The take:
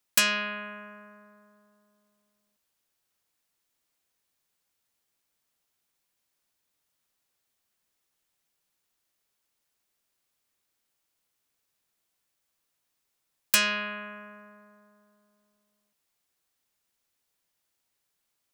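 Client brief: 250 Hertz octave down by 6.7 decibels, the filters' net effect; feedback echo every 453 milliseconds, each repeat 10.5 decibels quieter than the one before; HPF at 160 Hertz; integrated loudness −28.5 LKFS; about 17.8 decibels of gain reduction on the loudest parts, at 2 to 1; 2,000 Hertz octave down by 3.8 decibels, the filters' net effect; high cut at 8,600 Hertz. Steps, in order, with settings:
high-pass filter 160 Hz
low-pass filter 8,600 Hz
parametric band 250 Hz −7 dB
parametric band 2,000 Hz −5 dB
downward compressor 2 to 1, threshold −55 dBFS
repeating echo 453 ms, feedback 30%, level −10.5 dB
level +20.5 dB

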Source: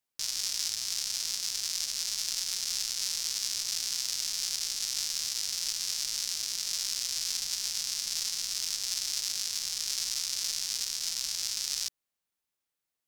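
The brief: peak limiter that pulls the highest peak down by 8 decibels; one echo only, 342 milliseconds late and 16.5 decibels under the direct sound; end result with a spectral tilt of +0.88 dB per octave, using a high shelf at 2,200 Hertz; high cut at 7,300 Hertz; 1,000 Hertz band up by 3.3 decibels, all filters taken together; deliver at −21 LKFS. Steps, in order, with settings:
low-pass filter 7,300 Hz
parametric band 1,000 Hz +3.5 dB
high-shelf EQ 2,200 Hz +3 dB
brickwall limiter −20 dBFS
single-tap delay 342 ms −16.5 dB
level +13 dB

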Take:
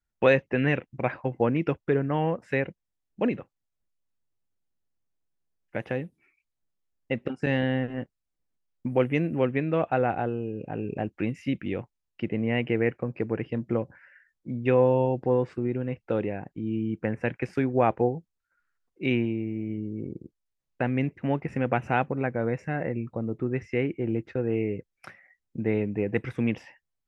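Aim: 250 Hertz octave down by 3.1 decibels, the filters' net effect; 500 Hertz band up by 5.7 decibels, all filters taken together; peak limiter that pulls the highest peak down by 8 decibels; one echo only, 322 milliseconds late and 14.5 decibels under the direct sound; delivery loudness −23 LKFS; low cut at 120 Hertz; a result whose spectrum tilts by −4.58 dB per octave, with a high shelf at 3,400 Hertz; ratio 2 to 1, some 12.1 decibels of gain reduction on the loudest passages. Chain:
high-pass filter 120 Hz
parametric band 250 Hz −6.5 dB
parametric band 500 Hz +8 dB
high-shelf EQ 3,400 Hz −3 dB
downward compressor 2 to 1, threshold −32 dBFS
brickwall limiter −23 dBFS
single-tap delay 322 ms −14.5 dB
level +12 dB

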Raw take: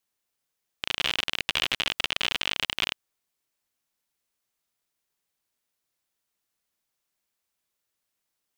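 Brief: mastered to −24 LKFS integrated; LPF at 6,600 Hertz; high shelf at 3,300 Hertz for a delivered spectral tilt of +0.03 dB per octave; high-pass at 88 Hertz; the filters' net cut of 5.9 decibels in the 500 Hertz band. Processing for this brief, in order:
high-pass filter 88 Hz
low-pass filter 6,600 Hz
parametric band 500 Hz −8 dB
high-shelf EQ 3,300 Hz +4 dB
level +2 dB

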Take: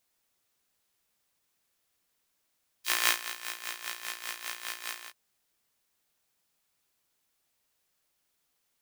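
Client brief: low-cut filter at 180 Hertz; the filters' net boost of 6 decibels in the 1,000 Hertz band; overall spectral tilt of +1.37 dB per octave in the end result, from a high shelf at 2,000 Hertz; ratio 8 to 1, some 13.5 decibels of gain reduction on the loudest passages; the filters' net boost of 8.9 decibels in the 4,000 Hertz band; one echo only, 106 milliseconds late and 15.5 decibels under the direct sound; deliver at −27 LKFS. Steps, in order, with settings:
high-pass filter 180 Hz
parametric band 1,000 Hz +5.5 dB
high-shelf EQ 2,000 Hz +4.5 dB
parametric band 4,000 Hz +6.5 dB
downward compressor 8 to 1, threshold −28 dBFS
single-tap delay 106 ms −15.5 dB
level +6.5 dB

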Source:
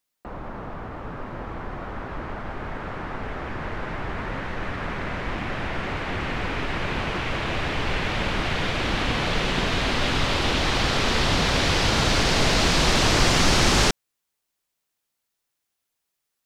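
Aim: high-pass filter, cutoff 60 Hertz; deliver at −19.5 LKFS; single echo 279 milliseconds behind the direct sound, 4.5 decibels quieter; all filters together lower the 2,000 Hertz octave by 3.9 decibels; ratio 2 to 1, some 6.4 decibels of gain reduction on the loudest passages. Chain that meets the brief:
high-pass filter 60 Hz
parametric band 2,000 Hz −5 dB
downward compressor 2 to 1, threshold −29 dBFS
single-tap delay 279 ms −4.5 dB
level +9.5 dB

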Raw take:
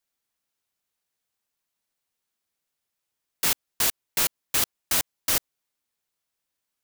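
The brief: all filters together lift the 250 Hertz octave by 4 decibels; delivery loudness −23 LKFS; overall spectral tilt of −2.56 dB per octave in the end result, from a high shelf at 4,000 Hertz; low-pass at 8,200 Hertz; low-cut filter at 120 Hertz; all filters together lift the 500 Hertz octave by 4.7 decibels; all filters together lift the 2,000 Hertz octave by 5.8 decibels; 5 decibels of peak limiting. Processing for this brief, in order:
high-pass filter 120 Hz
low-pass filter 8,200 Hz
parametric band 250 Hz +4 dB
parametric band 500 Hz +4.5 dB
parametric band 2,000 Hz +8.5 dB
high-shelf EQ 4,000 Hz −6.5 dB
level +8 dB
brickwall limiter −9.5 dBFS

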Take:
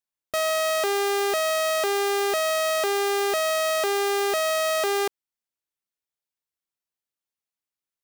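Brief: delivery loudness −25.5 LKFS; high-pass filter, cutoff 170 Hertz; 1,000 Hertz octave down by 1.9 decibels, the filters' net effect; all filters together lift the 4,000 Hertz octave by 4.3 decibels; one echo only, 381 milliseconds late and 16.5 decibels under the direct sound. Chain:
high-pass filter 170 Hz
parametric band 1,000 Hz −3 dB
parametric band 4,000 Hz +5.5 dB
single-tap delay 381 ms −16.5 dB
level −2.5 dB

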